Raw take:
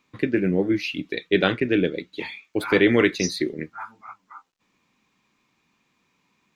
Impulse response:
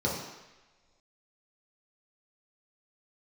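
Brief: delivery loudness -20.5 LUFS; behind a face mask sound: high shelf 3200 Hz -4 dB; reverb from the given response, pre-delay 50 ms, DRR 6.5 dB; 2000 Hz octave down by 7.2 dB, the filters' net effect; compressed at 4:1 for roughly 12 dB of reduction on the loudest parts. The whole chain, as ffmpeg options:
-filter_complex "[0:a]equalizer=f=2k:t=o:g=-7.5,acompressor=threshold=-29dB:ratio=4,asplit=2[a][b];[1:a]atrim=start_sample=2205,adelay=50[c];[b][c]afir=irnorm=-1:irlink=0,volume=-16dB[d];[a][d]amix=inputs=2:normalize=0,highshelf=f=3.2k:g=-4,volume=11dB"

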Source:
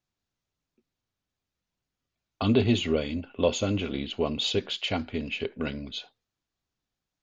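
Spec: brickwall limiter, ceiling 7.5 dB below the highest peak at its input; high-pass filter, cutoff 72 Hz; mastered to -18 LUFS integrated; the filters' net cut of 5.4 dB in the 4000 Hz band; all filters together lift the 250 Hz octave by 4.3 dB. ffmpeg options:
-af "highpass=72,equalizer=f=250:t=o:g=5,equalizer=f=4k:t=o:g=-7,volume=10.5dB,alimiter=limit=-5dB:level=0:latency=1"

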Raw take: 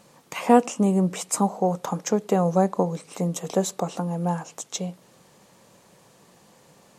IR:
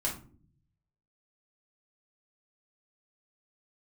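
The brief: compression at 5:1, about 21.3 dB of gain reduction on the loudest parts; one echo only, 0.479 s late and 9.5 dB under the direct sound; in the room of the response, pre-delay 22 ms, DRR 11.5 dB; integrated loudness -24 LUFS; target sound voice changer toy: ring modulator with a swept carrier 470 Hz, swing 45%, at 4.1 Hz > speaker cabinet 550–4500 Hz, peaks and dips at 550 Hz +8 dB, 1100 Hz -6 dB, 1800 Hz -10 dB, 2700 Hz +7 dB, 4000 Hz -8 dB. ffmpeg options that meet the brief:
-filter_complex "[0:a]acompressor=threshold=-35dB:ratio=5,aecho=1:1:479:0.335,asplit=2[a][b];[1:a]atrim=start_sample=2205,adelay=22[c];[b][c]afir=irnorm=-1:irlink=0,volume=-16.5dB[d];[a][d]amix=inputs=2:normalize=0,aeval=exprs='val(0)*sin(2*PI*470*n/s+470*0.45/4.1*sin(2*PI*4.1*n/s))':c=same,highpass=550,equalizer=f=550:t=q:w=4:g=8,equalizer=f=1.1k:t=q:w=4:g=-6,equalizer=f=1.8k:t=q:w=4:g=-10,equalizer=f=2.7k:t=q:w=4:g=7,equalizer=f=4k:t=q:w=4:g=-8,lowpass=f=4.5k:w=0.5412,lowpass=f=4.5k:w=1.3066,volume=19.5dB"

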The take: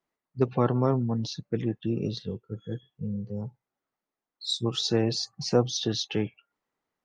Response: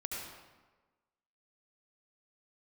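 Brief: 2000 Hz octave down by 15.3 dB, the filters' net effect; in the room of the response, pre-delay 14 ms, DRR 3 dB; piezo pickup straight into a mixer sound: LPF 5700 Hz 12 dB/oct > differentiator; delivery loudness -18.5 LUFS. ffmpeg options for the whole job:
-filter_complex "[0:a]equalizer=f=2k:t=o:g=-6.5,asplit=2[a][b];[1:a]atrim=start_sample=2205,adelay=14[c];[b][c]afir=irnorm=-1:irlink=0,volume=-4.5dB[d];[a][d]amix=inputs=2:normalize=0,lowpass=5.7k,aderivative,volume=21dB"

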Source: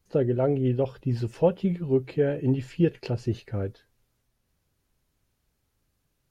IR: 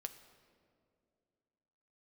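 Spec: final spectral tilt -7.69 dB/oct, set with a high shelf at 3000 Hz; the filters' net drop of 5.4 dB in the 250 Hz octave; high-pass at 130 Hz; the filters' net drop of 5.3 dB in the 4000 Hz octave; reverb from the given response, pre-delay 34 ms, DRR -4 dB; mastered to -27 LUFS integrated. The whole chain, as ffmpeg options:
-filter_complex "[0:a]highpass=130,equalizer=f=250:t=o:g=-7,highshelf=f=3k:g=-5.5,equalizer=f=4k:t=o:g=-3,asplit=2[a][b];[1:a]atrim=start_sample=2205,adelay=34[c];[b][c]afir=irnorm=-1:irlink=0,volume=7.5dB[d];[a][d]amix=inputs=2:normalize=0,volume=-3dB"

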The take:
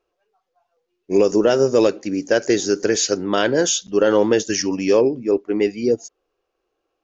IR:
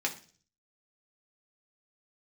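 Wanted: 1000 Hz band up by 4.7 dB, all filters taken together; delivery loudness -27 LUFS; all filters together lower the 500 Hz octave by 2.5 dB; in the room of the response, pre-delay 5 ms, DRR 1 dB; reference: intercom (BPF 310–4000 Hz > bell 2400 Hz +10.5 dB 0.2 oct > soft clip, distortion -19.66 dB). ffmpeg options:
-filter_complex "[0:a]equalizer=f=500:t=o:g=-3.5,equalizer=f=1k:t=o:g=7.5,asplit=2[a][b];[1:a]atrim=start_sample=2205,adelay=5[c];[b][c]afir=irnorm=-1:irlink=0,volume=-7dB[d];[a][d]amix=inputs=2:normalize=0,highpass=310,lowpass=4k,equalizer=f=2.4k:t=o:w=0.2:g=10.5,asoftclip=threshold=-7.5dB,volume=-7dB"

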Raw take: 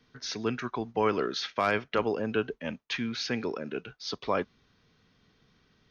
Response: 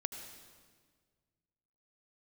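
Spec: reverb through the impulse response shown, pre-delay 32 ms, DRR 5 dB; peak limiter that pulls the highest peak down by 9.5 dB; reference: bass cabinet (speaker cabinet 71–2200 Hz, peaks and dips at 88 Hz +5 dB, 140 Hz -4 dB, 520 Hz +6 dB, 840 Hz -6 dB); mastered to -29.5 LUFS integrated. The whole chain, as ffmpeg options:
-filter_complex "[0:a]alimiter=limit=-23.5dB:level=0:latency=1,asplit=2[a][b];[1:a]atrim=start_sample=2205,adelay=32[c];[b][c]afir=irnorm=-1:irlink=0,volume=-5dB[d];[a][d]amix=inputs=2:normalize=0,highpass=f=71:w=0.5412,highpass=f=71:w=1.3066,equalizer=f=88:t=q:w=4:g=5,equalizer=f=140:t=q:w=4:g=-4,equalizer=f=520:t=q:w=4:g=6,equalizer=f=840:t=q:w=4:g=-6,lowpass=f=2.2k:w=0.5412,lowpass=f=2.2k:w=1.3066,volume=5dB"

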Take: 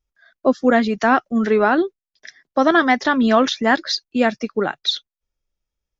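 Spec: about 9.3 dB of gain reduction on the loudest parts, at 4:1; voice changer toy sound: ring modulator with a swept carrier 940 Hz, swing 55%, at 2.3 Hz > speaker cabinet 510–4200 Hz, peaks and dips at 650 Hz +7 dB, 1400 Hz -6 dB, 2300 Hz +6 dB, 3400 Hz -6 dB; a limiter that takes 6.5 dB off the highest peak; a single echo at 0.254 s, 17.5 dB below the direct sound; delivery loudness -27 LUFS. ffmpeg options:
-af "acompressor=threshold=-21dB:ratio=4,alimiter=limit=-15.5dB:level=0:latency=1,aecho=1:1:254:0.133,aeval=exprs='val(0)*sin(2*PI*940*n/s+940*0.55/2.3*sin(2*PI*2.3*n/s))':c=same,highpass=510,equalizer=f=650:t=q:w=4:g=7,equalizer=f=1.4k:t=q:w=4:g=-6,equalizer=f=2.3k:t=q:w=4:g=6,equalizer=f=3.4k:t=q:w=4:g=-6,lowpass=f=4.2k:w=0.5412,lowpass=f=4.2k:w=1.3066,volume=2.5dB"

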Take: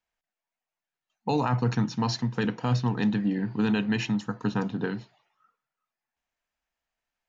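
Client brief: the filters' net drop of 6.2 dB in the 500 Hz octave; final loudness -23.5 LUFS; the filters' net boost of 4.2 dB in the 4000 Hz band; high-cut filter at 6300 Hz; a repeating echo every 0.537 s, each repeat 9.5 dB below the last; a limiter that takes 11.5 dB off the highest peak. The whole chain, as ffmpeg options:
-af "lowpass=6.3k,equalizer=f=500:t=o:g=-7.5,equalizer=f=4k:t=o:g=6,alimiter=level_in=2dB:limit=-24dB:level=0:latency=1,volume=-2dB,aecho=1:1:537|1074|1611|2148:0.335|0.111|0.0365|0.012,volume=11dB"

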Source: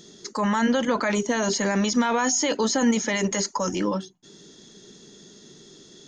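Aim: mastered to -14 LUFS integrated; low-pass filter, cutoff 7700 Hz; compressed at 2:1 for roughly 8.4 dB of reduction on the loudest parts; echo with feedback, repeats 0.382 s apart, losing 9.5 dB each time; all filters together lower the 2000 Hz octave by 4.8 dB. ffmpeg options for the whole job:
-af "lowpass=7.7k,equalizer=f=2k:t=o:g=-6,acompressor=threshold=-33dB:ratio=2,aecho=1:1:382|764|1146|1528:0.335|0.111|0.0365|0.012,volume=17dB"

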